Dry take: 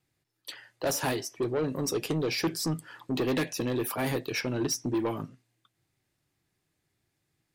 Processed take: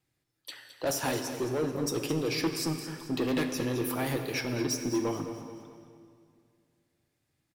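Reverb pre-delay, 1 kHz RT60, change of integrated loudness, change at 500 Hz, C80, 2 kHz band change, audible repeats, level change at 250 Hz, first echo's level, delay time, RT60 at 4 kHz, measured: 3 ms, 2.1 s, −0.5 dB, −1.0 dB, 7.0 dB, −1.0 dB, 4, 0.0 dB, −12.0 dB, 216 ms, 1.9 s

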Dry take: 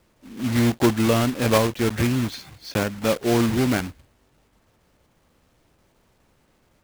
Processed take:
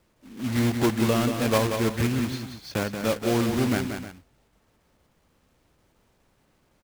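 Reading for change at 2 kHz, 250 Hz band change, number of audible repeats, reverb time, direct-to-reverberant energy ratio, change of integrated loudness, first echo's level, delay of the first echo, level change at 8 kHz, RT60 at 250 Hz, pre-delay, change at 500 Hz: −3.0 dB, −3.0 dB, 2, no reverb audible, no reverb audible, −3.5 dB, −7.0 dB, 181 ms, −3.0 dB, no reverb audible, no reverb audible, −3.0 dB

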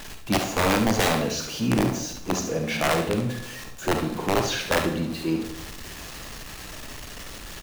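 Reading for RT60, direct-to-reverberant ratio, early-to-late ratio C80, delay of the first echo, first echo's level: 0.65 s, 3.5 dB, 10.5 dB, 71 ms, −8.5 dB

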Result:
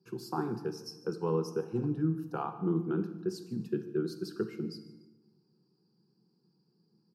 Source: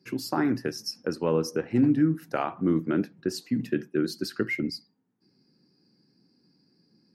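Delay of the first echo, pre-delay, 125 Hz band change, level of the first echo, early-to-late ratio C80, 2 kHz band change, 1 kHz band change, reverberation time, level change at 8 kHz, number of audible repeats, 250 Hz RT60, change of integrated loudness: 147 ms, 32 ms, −3.5 dB, −20.5 dB, 13.0 dB, −15.5 dB, −5.5 dB, 1.2 s, −11.5 dB, 2, 1.5 s, −7.0 dB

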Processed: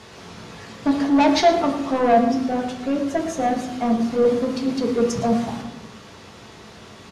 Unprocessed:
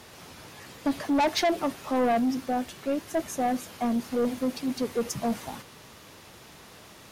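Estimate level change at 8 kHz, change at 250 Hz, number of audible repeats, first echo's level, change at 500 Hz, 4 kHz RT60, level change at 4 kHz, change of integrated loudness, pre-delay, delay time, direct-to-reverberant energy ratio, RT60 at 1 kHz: +2.5 dB, +7.5 dB, 1, −12.5 dB, +8.5 dB, 0.70 s, +5.0 dB, +7.5 dB, 3 ms, 114 ms, 1.5 dB, 0.90 s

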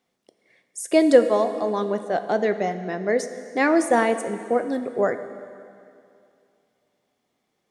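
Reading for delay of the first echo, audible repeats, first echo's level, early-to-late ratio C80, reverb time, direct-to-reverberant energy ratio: no echo audible, no echo audible, no echo audible, 11.5 dB, 2.5 s, 9.5 dB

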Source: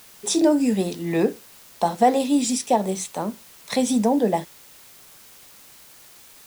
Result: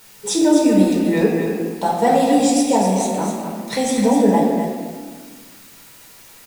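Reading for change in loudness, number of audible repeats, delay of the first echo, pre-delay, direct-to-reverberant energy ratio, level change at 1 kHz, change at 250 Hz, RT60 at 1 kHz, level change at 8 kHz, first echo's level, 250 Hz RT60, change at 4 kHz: +5.0 dB, 1, 252 ms, 6 ms, −5.0 dB, +4.5 dB, +6.0 dB, 1.4 s, +3.5 dB, −7.0 dB, 1.9 s, +3.5 dB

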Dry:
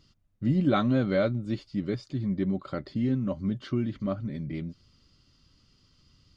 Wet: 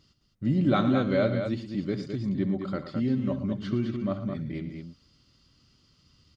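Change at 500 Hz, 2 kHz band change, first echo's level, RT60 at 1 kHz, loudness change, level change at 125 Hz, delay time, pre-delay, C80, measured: +1.0 dB, +1.0 dB, −14.5 dB, no reverb audible, +1.0 dB, 0.0 dB, 66 ms, no reverb audible, no reverb audible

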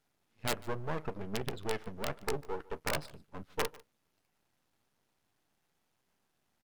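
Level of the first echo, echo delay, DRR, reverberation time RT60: −22.5 dB, 147 ms, no reverb audible, no reverb audible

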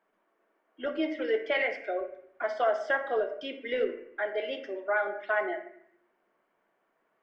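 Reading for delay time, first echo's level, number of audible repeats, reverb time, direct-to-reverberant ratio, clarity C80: no echo audible, no echo audible, no echo audible, 0.65 s, 5.0 dB, 12.0 dB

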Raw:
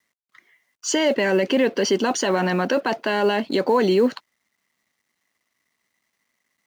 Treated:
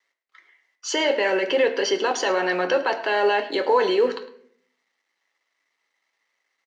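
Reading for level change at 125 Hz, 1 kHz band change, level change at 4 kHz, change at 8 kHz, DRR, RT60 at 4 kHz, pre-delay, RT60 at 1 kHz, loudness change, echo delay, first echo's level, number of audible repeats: below −15 dB, +1.0 dB, 0.0 dB, −4.5 dB, 6.0 dB, 0.40 s, 6 ms, 0.55 s, −1.0 dB, 107 ms, −17.5 dB, 1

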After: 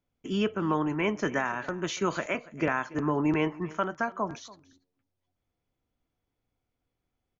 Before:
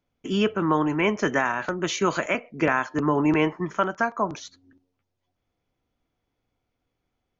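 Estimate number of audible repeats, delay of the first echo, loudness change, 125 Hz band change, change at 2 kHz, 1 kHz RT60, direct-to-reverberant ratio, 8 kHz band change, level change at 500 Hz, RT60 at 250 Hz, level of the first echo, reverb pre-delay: 1, 285 ms, −5.5 dB, −4.0 dB, −6.0 dB, no reverb audible, no reverb audible, can't be measured, −5.5 dB, no reverb audible, −20.5 dB, no reverb audible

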